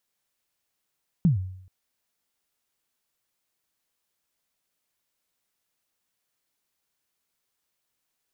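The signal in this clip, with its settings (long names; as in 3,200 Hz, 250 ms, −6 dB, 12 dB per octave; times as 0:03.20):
synth kick length 0.43 s, from 190 Hz, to 93 Hz, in 128 ms, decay 0.70 s, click off, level −13.5 dB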